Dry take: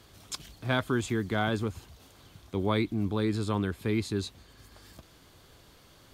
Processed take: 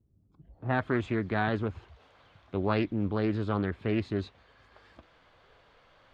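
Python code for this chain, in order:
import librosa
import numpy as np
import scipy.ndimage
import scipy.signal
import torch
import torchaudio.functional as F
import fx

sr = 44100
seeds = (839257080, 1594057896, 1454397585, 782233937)

y = fx.filter_sweep_lowpass(x, sr, from_hz=220.0, to_hz=2300.0, start_s=0.32, end_s=0.85, q=0.89)
y = fx.noise_reduce_blind(y, sr, reduce_db=10)
y = fx.doppler_dist(y, sr, depth_ms=0.25)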